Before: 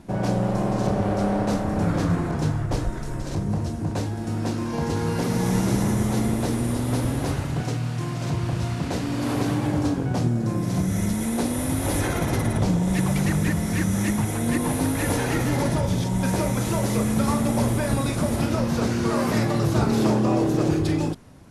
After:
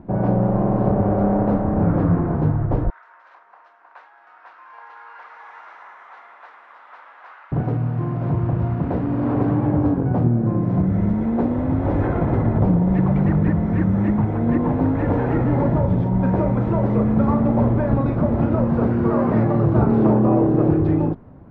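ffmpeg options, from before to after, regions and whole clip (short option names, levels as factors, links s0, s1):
-filter_complex "[0:a]asettb=1/sr,asplit=3[s0][s1][s2];[s0]atrim=end=2.904[s3];[s1]atrim=start=2.9:end=7.52,asetpts=PTS-STARTPTS,afade=t=in:d=0.004:c=qsin,afade=t=out:st=4.616:d=0.004:c=qsin,highpass=f=1200:w=0.5412,highpass=f=1200:w=1.3066,equalizer=f=9600:w=0.4:g=-5[s4];[s2]atrim=start=7.516[s5];[s3][s4]acrossfade=d=0.004:c1=hsin:c2=qsin[s6];[s6][s5]acrossfade=d=0.004:c1=qsin:c2=hsin,lowpass=1200,aemphasis=mode=reproduction:type=75fm,volume=1.58"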